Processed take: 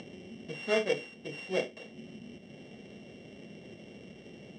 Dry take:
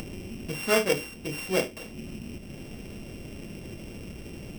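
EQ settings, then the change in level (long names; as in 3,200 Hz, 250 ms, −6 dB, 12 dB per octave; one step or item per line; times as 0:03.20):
Butterworth band-reject 2,500 Hz, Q 6.3
loudspeaker in its box 210–5,600 Hz, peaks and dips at 310 Hz −7 dB, 1,000 Hz −8 dB, 1,400 Hz −9 dB, 4,800 Hz −10 dB
−3.0 dB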